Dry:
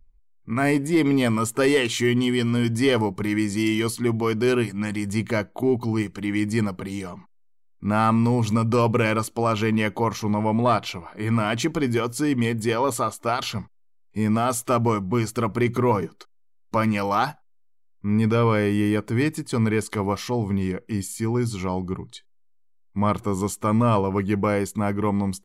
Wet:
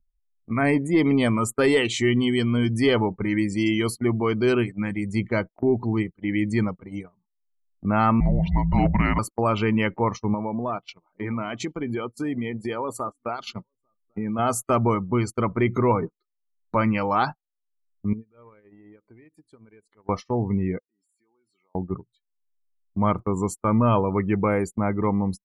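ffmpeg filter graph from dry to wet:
ffmpeg -i in.wav -filter_complex "[0:a]asettb=1/sr,asplit=3[link_01][link_02][link_03];[link_01]atrim=end=8.204[link_04];[link_02]atrim=start=8.2:end=9.19,asetpts=PTS-STARTPTS,afade=type=in:duration=0.004:curve=qsin,afade=type=out:start_time=0.986:duration=0.004:curve=qsin,afreqshift=-280,acrossover=split=4400[link_05][link_06];[link_06]acompressor=threshold=-53dB:ratio=4:attack=1:release=60[link_07];[link_05][link_07]amix=inputs=2:normalize=0,asoftclip=type=hard:threshold=-10dB[link_08];[link_03]atrim=start=9.186[link_09];[link_04][link_08]acrossfade=duration=0.004:curve1=hsin:curve2=qsin[link_10];[link_10][link_09]acrossfade=duration=0.004:curve1=qsin:curve2=hsin,asettb=1/sr,asplit=3[link_11][link_12][link_13];[link_11]atrim=end=10.344[link_14];[link_12]atrim=start=10.34:end=14.39,asetpts=PTS-STARTPTS,afade=type=in:duration=0.004:curve=qsin,afade=type=out:start_time=4.046:duration=0.004:curve=qsin,equalizer=frequency=83:width_type=o:width=0.63:gain=-13.5,acompressor=threshold=-23dB:ratio=10:attack=3.2:release=140:knee=1:detection=peak,aecho=1:1:847:0.075,atrim=end_sample=178605[link_15];[link_13]atrim=start=14.386[link_16];[link_14][link_15]acrossfade=duration=0.004:curve1=hsin:curve2=qsin[link_17];[link_17][link_16]acrossfade=duration=0.004:curve1=qsin:curve2=hsin,asettb=1/sr,asplit=3[link_18][link_19][link_20];[link_18]atrim=end=18.134[link_21];[link_19]atrim=start=18.13:end=20.09,asetpts=PTS-STARTPTS,afade=type=in:duration=0.004:curve=qsin,afade=type=out:start_time=1.956:duration=0.004:curve=qsin,bass=frequency=250:gain=-6,treble=frequency=4000:gain=-3,acompressor=threshold=-31dB:ratio=16:attack=3.2:release=140:knee=1:detection=peak[link_22];[link_20]atrim=start=20.086[link_23];[link_21][link_22]acrossfade=duration=0.004:curve1=hsin:curve2=qsin[link_24];[link_24][link_23]acrossfade=duration=0.004:curve1=qsin:curve2=hsin,asettb=1/sr,asplit=3[link_25][link_26][link_27];[link_25]atrim=end=20.794[link_28];[link_26]atrim=start=20.79:end=21.75,asetpts=PTS-STARTPTS,afade=type=in:duration=0.004:curve=qsin,afade=type=out:start_time=0.956:duration=0.004:curve=qsin,highpass=500,bandreject=frequency=6700:width=14,acompressor=threshold=-49dB:ratio=3:attack=3.2:release=140:knee=1:detection=peak[link_29];[link_27]atrim=start=21.746[link_30];[link_28][link_29]acrossfade=duration=0.004:curve1=hsin:curve2=qsin[link_31];[link_31][link_30]acrossfade=duration=0.004:curve1=qsin:curve2=hsin,acompressor=mode=upward:threshold=-25dB:ratio=2.5,afftdn=noise_reduction=33:noise_floor=-36,agate=range=-32dB:threshold=-28dB:ratio=16:detection=peak" out.wav

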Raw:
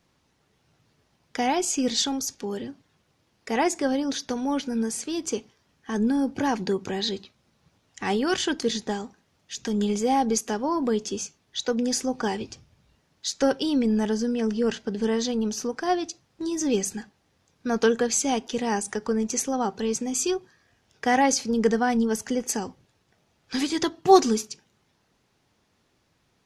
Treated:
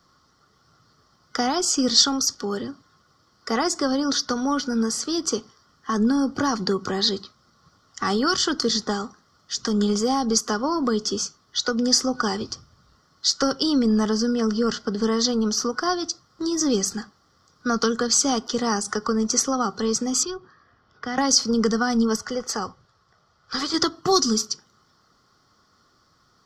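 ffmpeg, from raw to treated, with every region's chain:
ffmpeg -i in.wav -filter_complex "[0:a]asettb=1/sr,asplit=3[link_01][link_02][link_03];[link_01]atrim=end=20.234[link_04];[link_02]atrim=start=20.23:end=21.18,asetpts=PTS-STARTPTS,afade=type=in:duration=0.004:curve=qsin,afade=type=out:start_time=0.946:duration=0.004:curve=qsin,lowpass=2700,acrossover=split=190|3000[link_05][link_06][link_07];[link_06]acompressor=threshold=-41dB:ratio=2.5:attack=3.2:release=140:knee=2.83:detection=peak[link_08];[link_05][link_08][link_07]amix=inputs=3:normalize=0[link_09];[link_03]atrim=start=21.176[link_10];[link_04][link_09]acrossfade=duration=0.004:curve1=hsin:curve2=qsin[link_11];[link_11][link_10]acrossfade=duration=0.004:curve1=qsin:curve2=hsin,asettb=1/sr,asplit=3[link_12][link_13][link_14];[link_12]atrim=end=22.164[link_15];[link_13]atrim=start=22.16:end=23.74,asetpts=PTS-STARTPTS,afade=type=in:duration=0.004:curve=qsin,afade=type=out:start_time=1.576:duration=0.004:curve=qsin,lowpass=frequency=3600:poles=1,equalizer=frequency=270:width_type=o:width=0.88:gain=-9.5[link_16];[link_14]atrim=start=23.736[link_17];[link_15][link_16]acrossfade=duration=0.004:curve1=hsin:curve2=qsin[link_18];[link_18][link_17]acrossfade=duration=0.004:curve1=qsin:curve2=hsin,superequalizer=10b=3.98:12b=0.316:14b=2.51:16b=0.501,acrossover=split=260|3000[link_19][link_20][link_21];[link_20]acompressor=threshold=-25dB:ratio=6[link_22];[link_19][link_22][link_21]amix=inputs=3:normalize=0,volume=3.5dB" out.wav

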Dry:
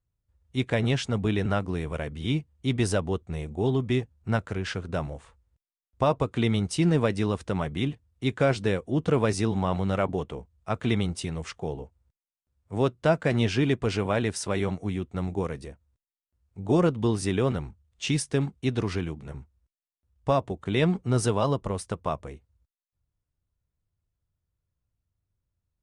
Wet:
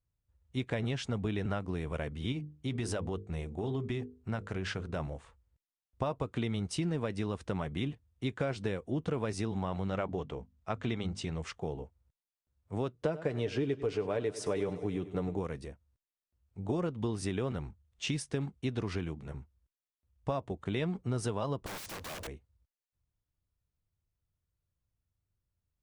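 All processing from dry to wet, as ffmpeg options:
ffmpeg -i in.wav -filter_complex "[0:a]asettb=1/sr,asplit=3[link_01][link_02][link_03];[link_01]atrim=end=2.324[link_04];[link_02]atrim=start=2.32:end=5,asetpts=PTS-STARTPTS,afade=type=in:duration=0.004:curve=qsin,afade=type=out:start_time=2.676:duration=0.004:curve=qsin,bandreject=frequency=50:width_type=h:width=6,bandreject=frequency=100:width_type=h:width=6,bandreject=frequency=150:width_type=h:width=6,bandreject=frequency=200:width_type=h:width=6,bandreject=frequency=250:width_type=h:width=6,bandreject=frequency=300:width_type=h:width=6,bandreject=frequency=350:width_type=h:width=6,bandreject=frequency=400:width_type=h:width=6,bandreject=frequency=450:width_type=h:width=6,bandreject=frequency=500:width_type=h:width=6,acompressor=threshold=-26dB:ratio=3:attack=3.2:release=140:knee=1:detection=peak[link_05];[link_03]atrim=start=4.996[link_06];[link_04][link_05]acrossfade=duration=0.004:curve1=hsin:curve2=qsin[link_07];[link_07][link_06]acrossfade=duration=0.004:curve1=qsin:curve2=hsin,asettb=1/sr,asplit=3[link_08][link_09][link_10];[link_08]atrim=end=9.884[link_11];[link_09]atrim=start=9.88:end=11.42,asetpts=PTS-STARTPTS,afade=type=in:duration=0.004:curve=qsin,afade=type=out:start_time=1.536:duration=0.004:curve=qsin,lowpass=frequency=7900:width=0.5412,lowpass=frequency=7900:width=1.3066,bandreject=frequency=50:width_type=h:width=6,bandreject=frequency=100:width_type=h:width=6,bandreject=frequency=150:width_type=h:width=6,bandreject=frequency=200:width_type=h:width=6,bandreject=frequency=250:width_type=h:width=6[link_12];[link_10]atrim=start=11.416[link_13];[link_11][link_12]acrossfade=duration=0.004:curve1=hsin:curve2=qsin[link_14];[link_14][link_13]acrossfade=duration=0.004:curve1=qsin:curve2=hsin,asettb=1/sr,asplit=3[link_15][link_16][link_17];[link_15]atrim=end=12.934[link_18];[link_16]atrim=start=12.93:end=15.37,asetpts=PTS-STARTPTS,afade=type=in:duration=0.004:curve=qsin,afade=type=out:start_time=2.436:duration=0.004:curve=qsin,equalizer=frequency=440:width=1.7:gain=10,aecho=1:1:6.8:0.42,atrim=end_sample=107604,aecho=1:1:99|198|297|396|495:0.141|0.0763|0.0412|0.0222|0.012,atrim=end_sample=107604[link_19];[link_17]atrim=start=15.366[link_20];[link_18][link_19]acrossfade=duration=0.004:curve1=hsin:curve2=qsin[link_21];[link_21][link_20]acrossfade=duration=0.004:curve1=qsin:curve2=hsin,asettb=1/sr,asplit=3[link_22][link_23][link_24];[link_22]atrim=end=21.664[link_25];[link_23]atrim=start=21.66:end=22.27,asetpts=PTS-STARTPTS,afade=type=in:duration=0.004:curve=qsin,afade=type=out:start_time=0.606:duration=0.004:curve=qsin,asplit=2[link_26][link_27];[link_27]highpass=frequency=720:poles=1,volume=39dB,asoftclip=type=tanh:threshold=-12.5dB[link_28];[link_26][link_28]amix=inputs=2:normalize=0,lowpass=frequency=4500:poles=1,volume=-6dB,acompressor=threshold=-26dB:ratio=3:attack=3.2:release=140:knee=1:detection=peak,aeval=exprs='(mod(44.7*val(0)+1,2)-1)/44.7':channel_layout=same[link_29];[link_24]atrim=start=22.266[link_30];[link_25][link_29]acrossfade=duration=0.004:curve1=hsin:curve2=qsin[link_31];[link_31][link_30]acrossfade=duration=0.004:curve1=qsin:curve2=hsin,highshelf=frequency=7000:gain=-4.5,acompressor=threshold=-26dB:ratio=6,volume=-3.5dB" out.wav

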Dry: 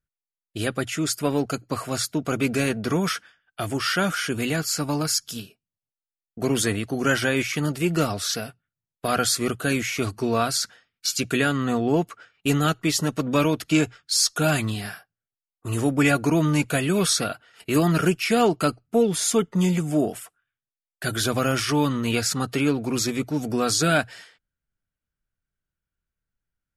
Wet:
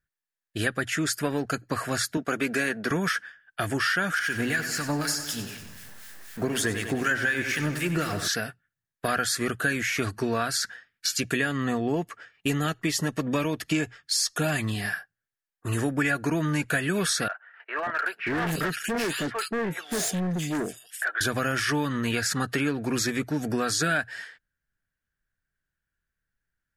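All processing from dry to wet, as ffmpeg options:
ffmpeg -i in.wav -filter_complex "[0:a]asettb=1/sr,asplit=3[link_01][link_02][link_03];[link_01]atrim=end=2.174[link_04];[link_02]atrim=start=2.17:end=2.91,asetpts=PTS-STARTPTS,afade=type=in:duration=0.004:curve=qsin,afade=type=out:start_time=0.736:duration=0.004:curve=qsin,highpass=210,agate=range=-33dB:threshold=-34dB:ratio=3:release=100:detection=peak[link_05];[link_03]atrim=start=2.906[link_06];[link_04][link_05]acrossfade=duration=0.004:curve1=hsin:curve2=qsin[link_07];[link_07][link_06]acrossfade=duration=0.004:curve1=qsin:curve2=hsin,asettb=1/sr,asplit=3[link_08][link_09][link_10];[link_08]atrim=end=4.194[link_11];[link_09]atrim=start=4.19:end=8.28,asetpts=PTS-STARTPTS,afade=type=in:duration=0.004:curve=qsin,afade=type=out:start_time=4.086:duration=0.004:curve=qsin,aeval=exprs='val(0)+0.5*0.0188*sgn(val(0))':channel_layout=same,acrossover=split=1300[link_12][link_13];[link_12]aeval=exprs='val(0)*(1-0.7/2+0.7/2*cos(2*PI*4*n/s))':channel_layout=same[link_14];[link_13]aeval=exprs='val(0)*(1-0.7/2-0.7/2*cos(2*PI*4*n/s))':channel_layout=same[link_15];[link_14][link_15]amix=inputs=2:normalize=0,aecho=1:1:96|192|288|384|480|576|672:0.282|0.166|0.0981|0.0579|0.0342|0.0201|0.0119,atrim=end_sample=180369[link_16];[link_10]atrim=start=8.276[link_17];[link_11][link_16]acrossfade=duration=0.004:curve1=hsin:curve2=qsin[link_18];[link_18][link_17]acrossfade=duration=0.004:curve1=qsin:curve2=hsin,asettb=1/sr,asplit=3[link_19][link_20][link_21];[link_19]atrim=end=11.194[link_22];[link_20]atrim=start=11.19:end=14.92,asetpts=PTS-STARTPTS,afade=type=in:duration=0.004:curve=qsin,afade=type=out:start_time=3.726:duration=0.004:curve=qsin,equalizer=frequency=1500:width=4.3:gain=-9,bandreject=frequency=3900:width=24[link_23];[link_21]atrim=start=14.916[link_24];[link_22][link_23]acrossfade=duration=0.004:curve1=hsin:curve2=qsin[link_25];[link_25][link_24]acrossfade=duration=0.004:curve1=qsin:curve2=hsin,asettb=1/sr,asplit=3[link_26][link_27][link_28];[link_26]atrim=end=17.284[link_29];[link_27]atrim=start=17.28:end=21.21,asetpts=PTS-STARTPTS,afade=type=in:duration=0.004:curve=qsin,afade=type=out:start_time=3.926:duration=0.004:curve=qsin,highpass=frequency=160:poles=1,acrossover=split=600|2200[link_30][link_31][link_32];[link_30]adelay=580[link_33];[link_32]adelay=780[link_34];[link_33][link_31][link_34]amix=inputs=3:normalize=0,atrim=end_sample=173313,asoftclip=type=hard:threshold=-25.5dB[link_35];[link_28]atrim=start=21.206[link_36];[link_29][link_35]acrossfade=duration=0.004:curve1=hsin:curve2=qsin[link_37];[link_37][link_36]acrossfade=duration=0.004:curve1=qsin:curve2=hsin,equalizer=frequency=1700:width=3.8:gain=14,acompressor=threshold=-23dB:ratio=4" out.wav

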